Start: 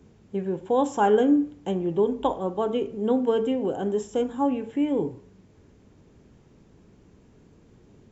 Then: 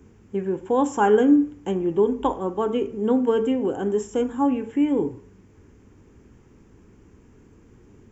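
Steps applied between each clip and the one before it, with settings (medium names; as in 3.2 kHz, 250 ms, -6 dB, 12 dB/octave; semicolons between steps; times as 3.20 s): fifteen-band graphic EQ 160 Hz -7 dB, 630 Hz -9 dB, 4 kHz -12 dB; trim +5.5 dB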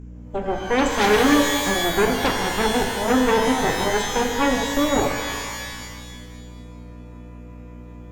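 Chebyshev shaper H 8 -9 dB, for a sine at -7.5 dBFS; hum 60 Hz, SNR 13 dB; pitch-shifted reverb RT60 1.6 s, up +12 st, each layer -2 dB, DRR 5 dB; trim -3.5 dB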